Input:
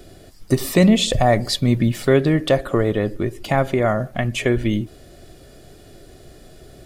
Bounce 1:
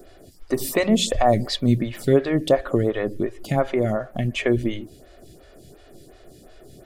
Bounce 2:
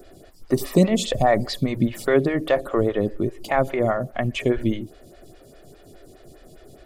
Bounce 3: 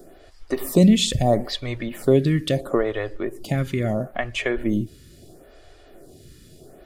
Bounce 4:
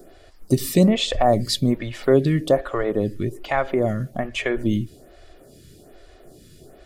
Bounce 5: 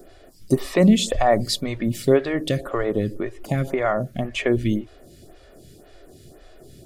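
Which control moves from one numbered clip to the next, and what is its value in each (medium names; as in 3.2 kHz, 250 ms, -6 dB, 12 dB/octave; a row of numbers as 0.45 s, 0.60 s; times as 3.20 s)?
lamp-driven phase shifter, rate: 2.8 Hz, 4.9 Hz, 0.75 Hz, 1.2 Hz, 1.9 Hz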